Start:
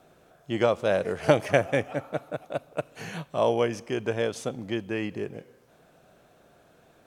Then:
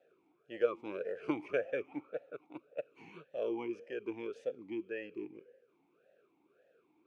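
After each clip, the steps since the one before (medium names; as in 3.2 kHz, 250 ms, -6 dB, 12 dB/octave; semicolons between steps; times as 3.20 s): talking filter e-u 1.8 Hz; trim -1 dB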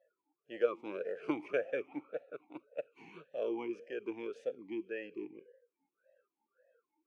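spectral noise reduction 21 dB; high-pass 150 Hz 12 dB/octave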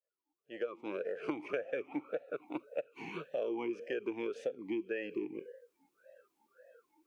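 fade-in on the opening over 2.13 s; compression 5:1, threshold -45 dBFS, peak gain reduction 13.5 dB; trim +11 dB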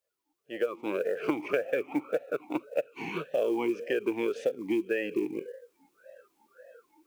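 short-mantissa float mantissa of 4-bit; trim +8 dB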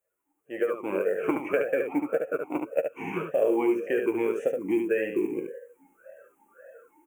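Butterworth band-stop 4.3 kHz, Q 0.88; on a send: early reflections 11 ms -7.5 dB, 73 ms -5 dB; on the sum: trim +2 dB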